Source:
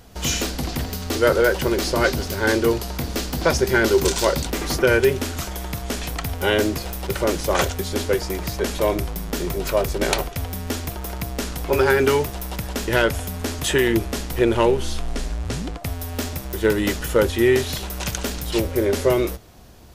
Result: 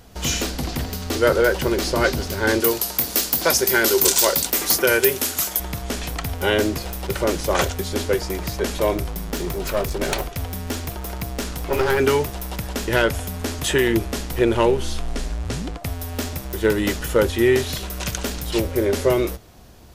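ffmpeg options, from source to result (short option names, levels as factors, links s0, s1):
-filter_complex "[0:a]asettb=1/sr,asplit=3[s0][s1][s2];[s0]atrim=end=2.604[s3];[s1]atrim=start=2.6:end=5.6,asetpts=PTS-STARTPTS,afade=t=in:d=0.004:c=qsin,afade=t=out:st=2.996:d=0.004:c=qsin,aemphasis=mode=production:type=bsi[s4];[s2]atrim=start=5.596[s5];[s3][s4]acrossfade=d=0.004:c1=hsin:c2=qsin[s6];[s6][s5]acrossfade=d=0.004:c1=qsin:c2=hsin,asettb=1/sr,asplit=3[s7][s8][s9];[s7]atrim=end=8.974[s10];[s8]atrim=start=8.97:end=11.98,asetpts=PTS-STARTPTS,afade=t=in:d=0.004:c=qsin,afade=t=out:st=3.006:d=0.004:c=qsin,aeval=exprs='clip(val(0),-1,0.0708)':c=same[s11];[s9]atrim=start=11.976[s12];[s10][s11]acrossfade=d=0.004:c1=hsin:c2=qsin[s13];[s13][s12]acrossfade=d=0.004:c1=qsin:c2=hsin,asettb=1/sr,asplit=3[s14][s15][s16];[s14]atrim=end=17.714[s17];[s15]atrim=start=17.71:end=18.17,asetpts=PTS-STARTPTS,afade=t=in:d=0.004:c=qsin,afade=t=out:st=0.456:d=0.004:c=qsin,bandreject=f=850:w=8.8[s18];[s16]atrim=start=18.166[s19];[s17][s18]acrossfade=d=0.004:c1=hsin:c2=qsin[s20];[s20][s19]acrossfade=d=0.004:c1=qsin:c2=hsin"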